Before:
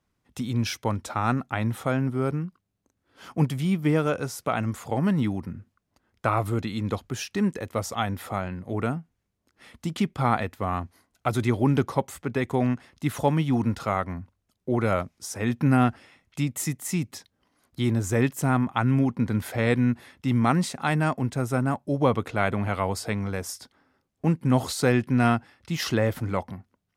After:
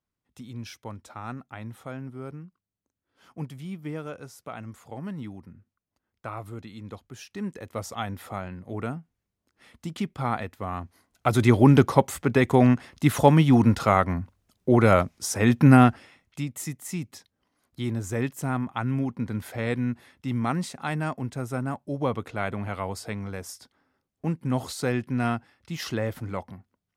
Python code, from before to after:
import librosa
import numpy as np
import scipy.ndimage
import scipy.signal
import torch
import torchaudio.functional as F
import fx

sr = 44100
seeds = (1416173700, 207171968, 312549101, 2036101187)

y = fx.gain(x, sr, db=fx.line((7.09, -12.0), (7.81, -4.5), (10.75, -4.5), (11.52, 6.0), (15.74, 6.0), (16.46, -5.0)))